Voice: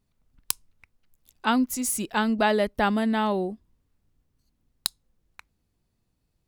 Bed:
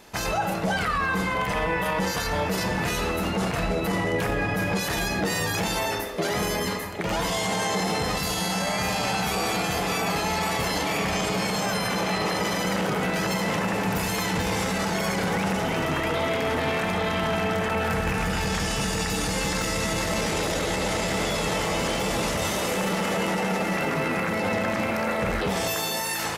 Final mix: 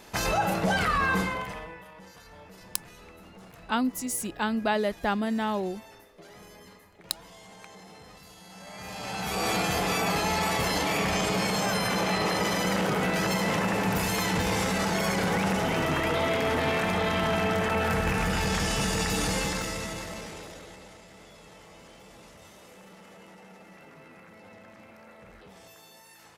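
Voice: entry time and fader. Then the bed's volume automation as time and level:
2.25 s, −4.0 dB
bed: 0:01.17 0 dB
0:01.89 −23.5 dB
0:08.43 −23.5 dB
0:09.49 −1 dB
0:19.32 −1 dB
0:21.04 −25 dB

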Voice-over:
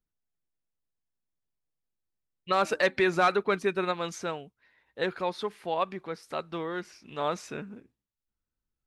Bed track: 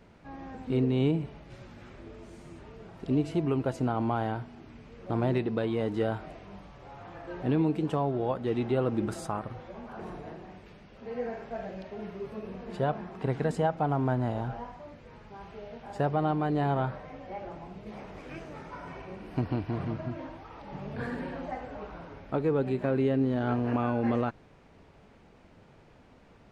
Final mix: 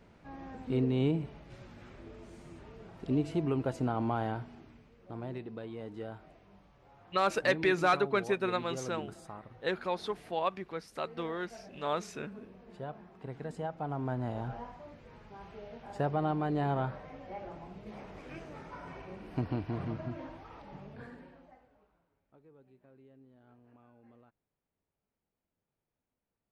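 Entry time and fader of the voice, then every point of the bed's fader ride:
4.65 s, −3.0 dB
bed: 0:04.54 −3 dB
0:04.98 −13 dB
0:13.31 −13 dB
0:14.54 −3.5 dB
0:20.55 −3.5 dB
0:22.08 −33 dB

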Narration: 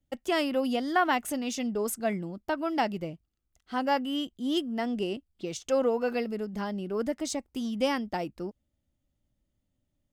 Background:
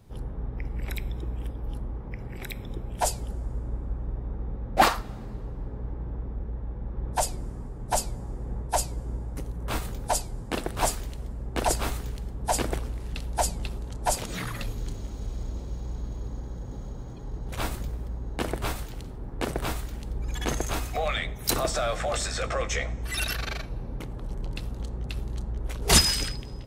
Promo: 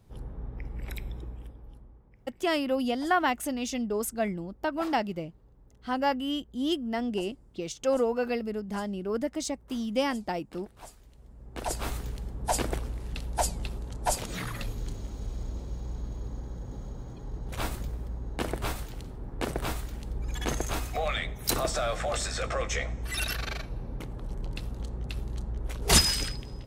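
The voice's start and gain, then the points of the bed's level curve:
2.15 s, 0.0 dB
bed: 0:01.15 −5 dB
0:02.13 −22.5 dB
0:10.96 −22.5 dB
0:11.96 −2 dB

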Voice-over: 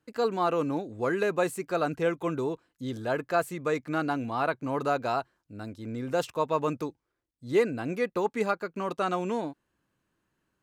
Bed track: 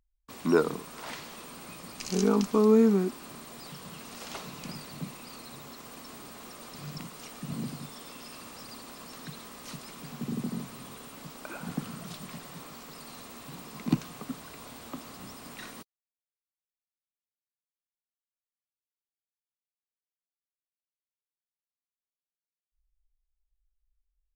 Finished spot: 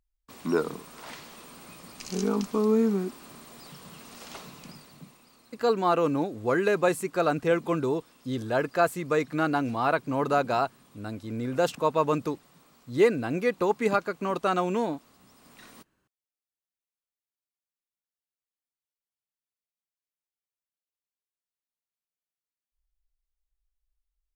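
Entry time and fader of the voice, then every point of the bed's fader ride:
5.45 s, +3.0 dB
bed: 0:04.43 −2.5 dB
0:05.34 −14 dB
0:15.24 −14 dB
0:15.87 −3.5 dB

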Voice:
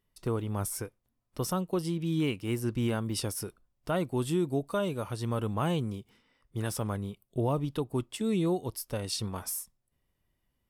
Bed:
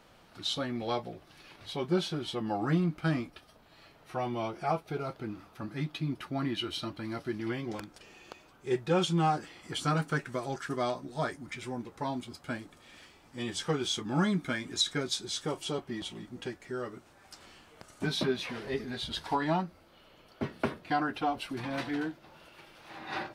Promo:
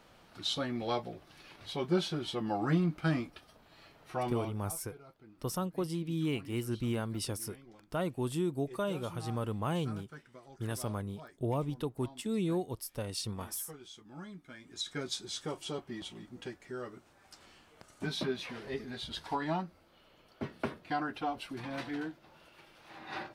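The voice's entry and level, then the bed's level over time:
4.05 s, −4.0 dB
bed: 0:04.33 −1 dB
0:04.66 −19 dB
0:14.46 −19 dB
0:15.03 −4.5 dB

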